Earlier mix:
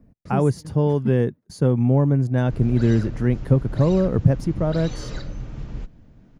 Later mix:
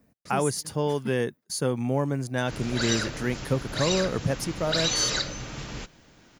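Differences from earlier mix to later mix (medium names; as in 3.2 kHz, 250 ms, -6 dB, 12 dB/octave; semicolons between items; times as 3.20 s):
background +8.0 dB; master: add tilt EQ +4 dB/octave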